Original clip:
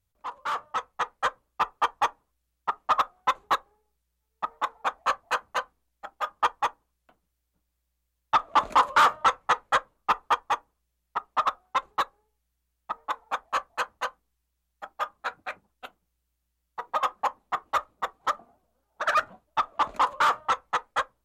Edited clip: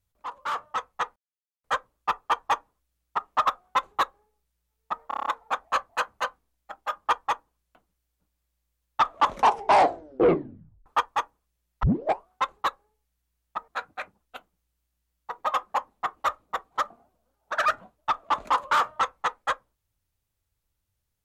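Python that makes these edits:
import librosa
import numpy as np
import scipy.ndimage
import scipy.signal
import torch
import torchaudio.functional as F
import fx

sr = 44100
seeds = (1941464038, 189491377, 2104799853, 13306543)

y = fx.edit(x, sr, fx.insert_silence(at_s=1.16, length_s=0.48),
    fx.stutter(start_s=4.6, slice_s=0.03, count=7),
    fx.tape_stop(start_s=8.56, length_s=1.64),
    fx.tape_start(start_s=11.17, length_s=0.45),
    fx.cut(start_s=13.02, length_s=2.15), tone=tone)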